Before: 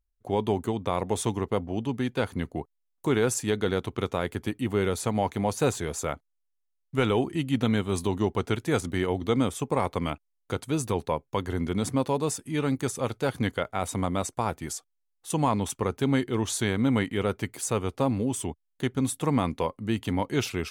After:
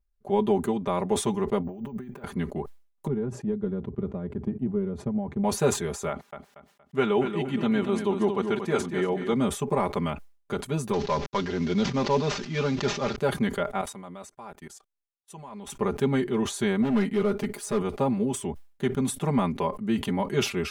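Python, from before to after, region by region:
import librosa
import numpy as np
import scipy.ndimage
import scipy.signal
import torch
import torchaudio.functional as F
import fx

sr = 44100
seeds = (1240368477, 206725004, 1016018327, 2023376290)

y = fx.chain(x, sr, fx.resample_bad(factor=2, down='filtered', up='hold'),
    fx.peak_eq(hz=3600.0, db=-11.0, octaves=1.2),
    fx.over_compress(threshold_db=-40.0, ratio=-1.0), at=(1.64, 2.24))
y = fx.chain(y, sr, fx.bandpass_q(hz=110.0, q=0.76),
    fx.transient(attack_db=5, sustain_db=-1), at=(3.07, 5.44))
y = fx.chain(y, sr, fx.highpass(hz=200.0, slope=6),
    fx.high_shelf(hz=8800.0, db=-11.0),
    fx.echo_feedback(ms=234, feedback_pct=33, wet_db=-8), at=(6.09, 9.33))
y = fx.chain(y, sr, fx.cvsd(bps=32000),
    fx.high_shelf(hz=2300.0, db=10.0),
    fx.sustainer(db_per_s=66.0), at=(10.93, 13.16))
y = fx.chain(y, sr, fx.low_shelf(hz=350.0, db=-7.5),
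    fx.level_steps(step_db=20),
    fx.upward_expand(threshold_db=-58.0, expansion=2.5), at=(13.81, 15.67))
y = fx.chain(y, sr, fx.comb(ms=4.8, depth=0.47),
    fx.clip_hard(threshold_db=-22.5), at=(16.82, 17.82))
y = fx.high_shelf(y, sr, hz=2700.0, db=-8.5)
y = y + 0.94 * np.pad(y, (int(5.0 * sr / 1000.0), 0))[:len(y)]
y = fx.sustainer(y, sr, db_per_s=130.0)
y = y * librosa.db_to_amplitude(-1.0)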